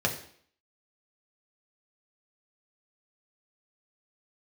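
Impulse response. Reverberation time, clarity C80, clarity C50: 0.60 s, 13.0 dB, 10.0 dB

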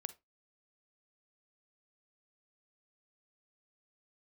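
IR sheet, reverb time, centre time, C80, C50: 0.20 s, 3 ms, 26.5 dB, 16.5 dB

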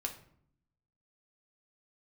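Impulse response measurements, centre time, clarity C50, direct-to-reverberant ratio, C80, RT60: 13 ms, 10.5 dB, 1.5 dB, 14.5 dB, 0.65 s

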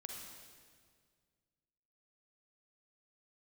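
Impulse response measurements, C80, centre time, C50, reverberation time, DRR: 3.0 dB, 78 ms, 1.0 dB, 1.9 s, 0.5 dB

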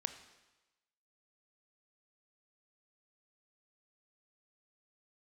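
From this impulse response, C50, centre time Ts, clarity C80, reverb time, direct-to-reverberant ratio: 10.5 dB, 12 ms, 12.5 dB, 1.1 s, 9.0 dB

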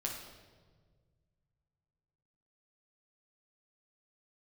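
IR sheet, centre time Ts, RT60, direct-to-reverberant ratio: 48 ms, 1.6 s, −1.5 dB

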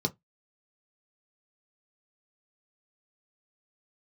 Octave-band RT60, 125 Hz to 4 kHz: 0.20, 0.20, 0.15, 0.15, 0.15, 0.10 seconds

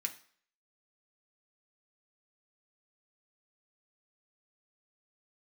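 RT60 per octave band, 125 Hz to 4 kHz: 0.40, 0.45, 0.50, 0.55, 0.50, 0.50 seconds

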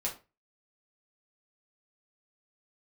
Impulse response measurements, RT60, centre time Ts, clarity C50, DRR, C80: 0.30 s, 18 ms, 10.5 dB, −3.5 dB, 17.5 dB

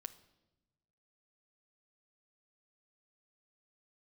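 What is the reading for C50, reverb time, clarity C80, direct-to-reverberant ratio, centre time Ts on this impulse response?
15.5 dB, 1.0 s, 18.5 dB, 9.0 dB, 5 ms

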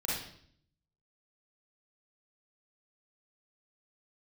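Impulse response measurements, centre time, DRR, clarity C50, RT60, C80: 63 ms, −7.0 dB, −1.5 dB, 0.60 s, 5.0 dB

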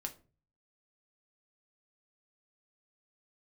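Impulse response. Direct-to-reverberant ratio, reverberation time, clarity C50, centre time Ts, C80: 4.0 dB, 0.35 s, 15.5 dB, 8 ms, 21.5 dB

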